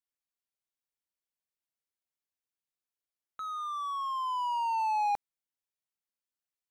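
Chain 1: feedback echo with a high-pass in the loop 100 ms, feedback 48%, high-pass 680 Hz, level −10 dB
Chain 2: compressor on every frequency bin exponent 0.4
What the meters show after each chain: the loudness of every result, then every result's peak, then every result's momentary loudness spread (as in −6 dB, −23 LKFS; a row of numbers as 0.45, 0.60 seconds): −32.0, −31.0 LKFS; −21.0, −15.0 dBFS; 10, 9 LU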